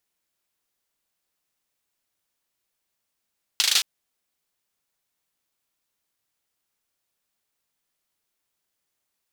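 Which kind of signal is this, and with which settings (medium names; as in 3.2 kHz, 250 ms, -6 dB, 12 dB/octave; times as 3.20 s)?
hand clap length 0.22 s, bursts 5, apart 38 ms, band 3.8 kHz, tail 0.33 s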